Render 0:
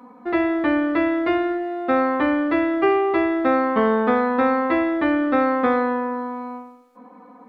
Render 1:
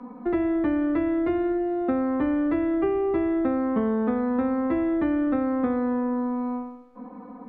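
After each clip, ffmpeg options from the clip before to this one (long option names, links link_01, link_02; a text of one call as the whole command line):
ffmpeg -i in.wav -filter_complex "[0:a]aemphasis=mode=reproduction:type=riaa,acrossover=split=150|440[link_01][link_02][link_03];[link_01]acompressor=threshold=-44dB:ratio=4[link_04];[link_02]acompressor=threshold=-25dB:ratio=4[link_05];[link_03]acompressor=threshold=-34dB:ratio=4[link_06];[link_04][link_05][link_06]amix=inputs=3:normalize=0" out.wav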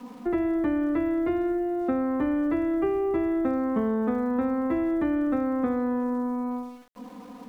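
ffmpeg -i in.wav -af "aeval=exprs='val(0)*gte(abs(val(0)),0.00398)':channel_layout=same,volume=-1.5dB" out.wav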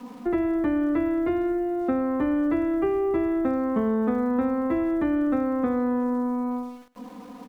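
ffmpeg -i in.wav -af "aecho=1:1:105:0.1,volume=1.5dB" out.wav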